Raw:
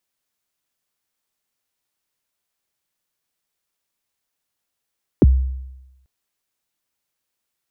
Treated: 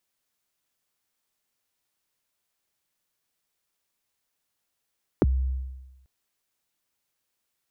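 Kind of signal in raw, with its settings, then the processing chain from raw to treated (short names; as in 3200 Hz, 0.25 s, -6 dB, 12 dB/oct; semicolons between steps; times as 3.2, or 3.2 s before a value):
kick drum length 0.84 s, from 450 Hz, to 65 Hz, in 30 ms, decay 0.98 s, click off, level -5.5 dB
compressor 6:1, threshold -21 dBFS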